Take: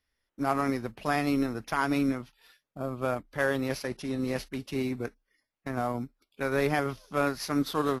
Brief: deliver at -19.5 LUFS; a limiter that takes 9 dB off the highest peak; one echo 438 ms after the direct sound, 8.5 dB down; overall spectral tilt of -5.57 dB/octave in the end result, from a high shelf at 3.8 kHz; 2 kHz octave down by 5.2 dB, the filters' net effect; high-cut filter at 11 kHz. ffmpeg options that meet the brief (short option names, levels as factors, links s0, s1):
-af "lowpass=11000,equalizer=f=2000:t=o:g=-8,highshelf=f=3800:g=3.5,alimiter=limit=0.075:level=0:latency=1,aecho=1:1:438:0.376,volume=5.62"